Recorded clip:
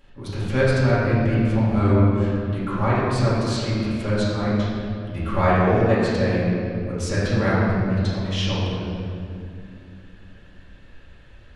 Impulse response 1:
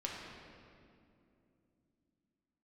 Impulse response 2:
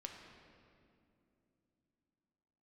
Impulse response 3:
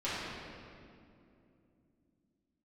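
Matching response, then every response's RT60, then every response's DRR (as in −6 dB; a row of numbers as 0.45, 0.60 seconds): 3; 2.6, 2.8, 2.7 seconds; −3.0, 1.5, −12.5 decibels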